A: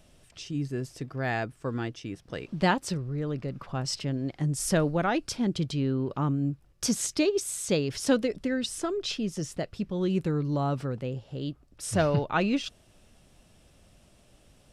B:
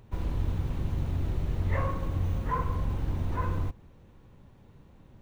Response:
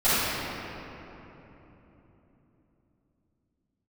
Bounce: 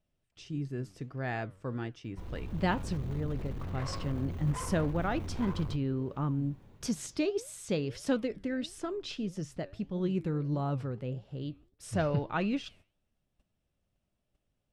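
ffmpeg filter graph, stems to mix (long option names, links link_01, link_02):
-filter_complex "[0:a]bass=frequency=250:gain=3,treble=frequency=4000:gain=-6,volume=-1.5dB[link_01];[1:a]dynaudnorm=framelen=170:gausssize=7:maxgain=9dB,alimiter=limit=-16.5dB:level=0:latency=1:release=32,asoftclip=type=hard:threshold=-25.5dB,adelay=2050,volume=-5.5dB[link_02];[link_01][link_02]amix=inputs=2:normalize=0,agate=range=-18dB:threshold=-52dB:ratio=16:detection=peak,flanger=delay=4.6:depth=6.3:regen=87:speed=1.6:shape=triangular"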